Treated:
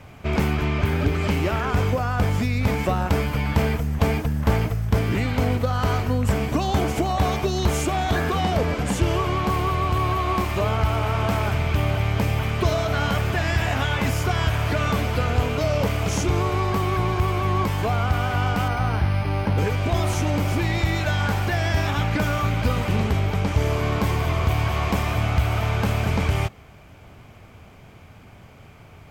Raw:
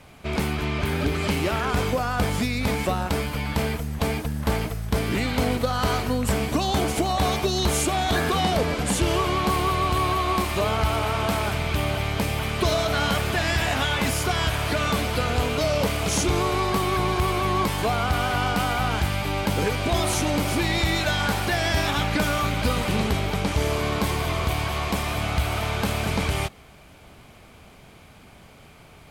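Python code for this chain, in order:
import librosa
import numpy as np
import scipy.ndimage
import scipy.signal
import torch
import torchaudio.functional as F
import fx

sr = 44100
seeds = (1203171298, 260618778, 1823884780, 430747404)

y = fx.graphic_eq_15(x, sr, hz=(100, 4000, 10000), db=(8, -6, -10))
y = fx.rider(y, sr, range_db=3, speed_s=0.5)
y = fx.resample_linear(y, sr, factor=6, at=(18.68, 19.58))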